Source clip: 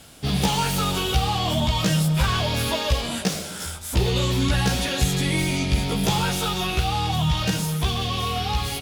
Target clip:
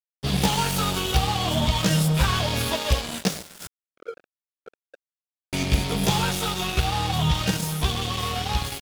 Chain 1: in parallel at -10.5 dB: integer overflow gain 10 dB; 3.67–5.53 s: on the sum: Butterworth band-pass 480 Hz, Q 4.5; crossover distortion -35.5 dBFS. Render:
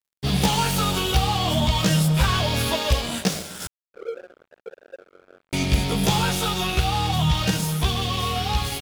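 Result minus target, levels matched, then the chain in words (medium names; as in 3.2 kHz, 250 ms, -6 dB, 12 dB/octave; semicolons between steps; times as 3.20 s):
crossover distortion: distortion -7 dB
in parallel at -10.5 dB: integer overflow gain 10 dB; 3.67–5.53 s: on the sum: Butterworth band-pass 480 Hz, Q 4.5; crossover distortion -28 dBFS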